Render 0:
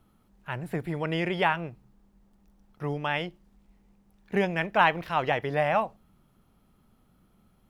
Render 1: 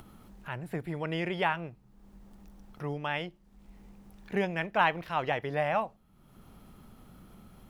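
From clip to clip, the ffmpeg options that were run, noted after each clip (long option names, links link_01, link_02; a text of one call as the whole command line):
ffmpeg -i in.wav -af "acompressor=mode=upward:threshold=-35dB:ratio=2.5,volume=-4dB" out.wav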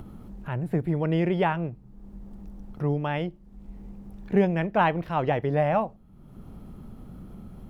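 ffmpeg -i in.wav -af "tiltshelf=frequency=810:gain=7.5,volume=4dB" out.wav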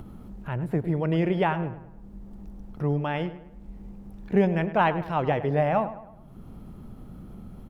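ffmpeg -i in.wav -filter_complex "[0:a]asplit=2[link_01][link_02];[link_02]adelay=104,lowpass=frequency=2600:poles=1,volume=-13dB,asplit=2[link_03][link_04];[link_04]adelay=104,lowpass=frequency=2600:poles=1,volume=0.46,asplit=2[link_05][link_06];[link_06]adelay=104,lowpass=frequency=2600:poles=1,volume=0.46,asplit=2[link_07][link_08];[link_08]adelay=104,lowpass=frequency=2600:poles=1,volume=0.46,asplit=2[link_09][link_10];[link_10]adelay=104,lowpass=frequency=2600:poles=1,volume=0.46[link_11];[link_01][link_03][link_05][link_07][link_09][link_11]amix=inputs=6:normalize=0" out.wav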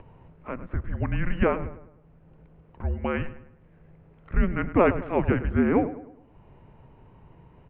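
ffmpeg -i in.wav -af "highpass=frequency=300:width_type=q:width=0.5412,highpass=frequency=300:width_type=q:width=1.307,lowpass=frequency=3100:width_type=q:width=0.5176,lowpass=frequency=3100:width_type=q:width=0.7071,lowpass=frequency=3100:width_type=q:width=1.932,afreqshift=-360,volume=3dB" out.wav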